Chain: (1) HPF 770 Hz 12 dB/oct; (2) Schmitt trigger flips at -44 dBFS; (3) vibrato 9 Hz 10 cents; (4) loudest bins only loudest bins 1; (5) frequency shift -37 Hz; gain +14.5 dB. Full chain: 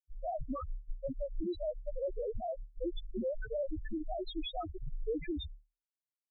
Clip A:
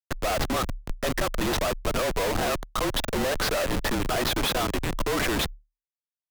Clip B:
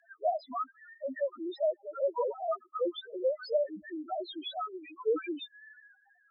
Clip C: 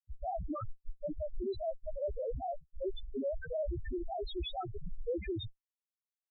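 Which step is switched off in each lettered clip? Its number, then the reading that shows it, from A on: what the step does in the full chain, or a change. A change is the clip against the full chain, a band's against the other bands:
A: 4, 2 kHz band +9.5 dB; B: 2, crest factor change +3.0 dB; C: 5, 125 Hz band +3.0 dB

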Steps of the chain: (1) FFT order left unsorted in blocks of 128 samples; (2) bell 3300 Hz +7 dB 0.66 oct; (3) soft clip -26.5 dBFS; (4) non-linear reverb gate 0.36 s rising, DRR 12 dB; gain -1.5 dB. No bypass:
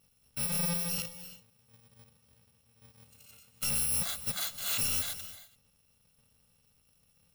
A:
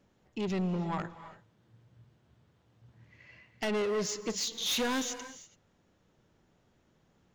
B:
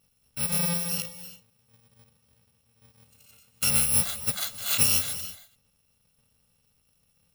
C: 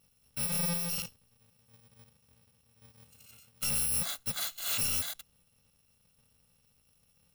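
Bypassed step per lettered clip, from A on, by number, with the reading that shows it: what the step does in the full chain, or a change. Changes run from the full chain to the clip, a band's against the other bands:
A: 1, 500 Hz band +12.0 dB; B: 3, distortion -6 dB; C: 4, momentary loudness spread change -6 LU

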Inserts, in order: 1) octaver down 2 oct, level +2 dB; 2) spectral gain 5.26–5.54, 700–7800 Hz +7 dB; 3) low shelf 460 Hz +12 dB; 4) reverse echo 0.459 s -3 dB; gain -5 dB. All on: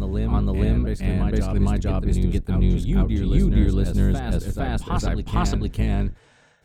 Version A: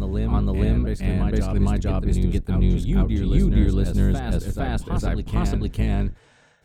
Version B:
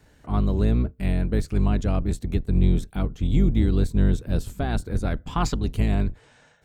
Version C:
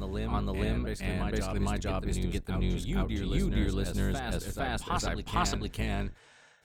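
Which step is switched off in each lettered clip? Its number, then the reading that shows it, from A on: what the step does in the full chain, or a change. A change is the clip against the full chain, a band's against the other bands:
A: 2, 1 kHz band -2.0 dB; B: 4, momentary loudness spread change +1 LU; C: 3, 125 Hz band -9.5 dB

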